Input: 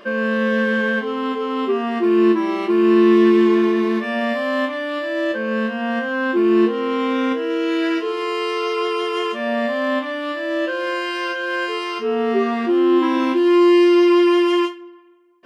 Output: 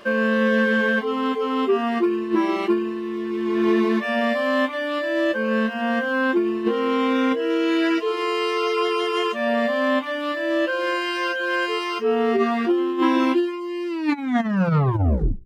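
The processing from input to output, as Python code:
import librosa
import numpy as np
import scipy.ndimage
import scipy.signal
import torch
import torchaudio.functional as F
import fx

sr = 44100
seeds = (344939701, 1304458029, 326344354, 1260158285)

y = fx.tape_stop_end(x, sr, length_s=1.59)
y = fx.hum_notches(y, sr, base_hz=60, count=8)
y = fx.over_compress(y, sr, threshold_db=-17.0, ratio=-0.5)
y = np.sign(y) * np.maximum(np.abs(y) - 10.0 ** (-51.0 / 20.0), 0.0)
y = fx.dereverb_blind(y, sr, rt60_s=0.53)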